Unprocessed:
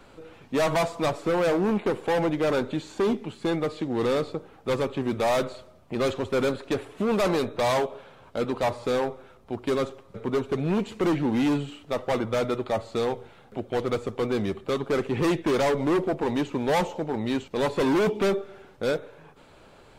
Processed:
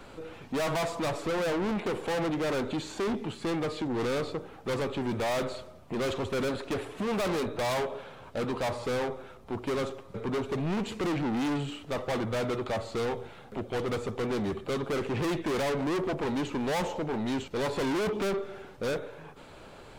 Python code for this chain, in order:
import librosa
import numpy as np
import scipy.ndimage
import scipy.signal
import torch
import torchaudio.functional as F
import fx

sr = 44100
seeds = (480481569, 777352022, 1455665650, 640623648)

y = 10.0 ** (-31.0 / 20.0) * np.tanh(x / 10.0 ** (-31.0 / 20.0))
y = y * librosa.db_to_amplitude(3.5)